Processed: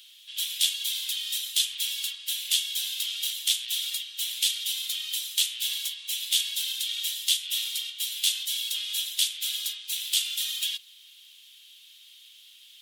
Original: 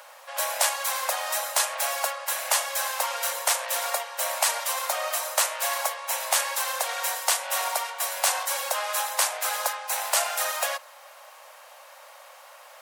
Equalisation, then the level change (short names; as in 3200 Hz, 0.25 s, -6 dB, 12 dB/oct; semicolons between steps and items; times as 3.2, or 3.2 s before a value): ladder high-pass 2600 Hz, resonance 45%; bell 3400 Hz +15 dB 0.59 oct; high shelf 5200 Hz +10 dB; -4.0 dB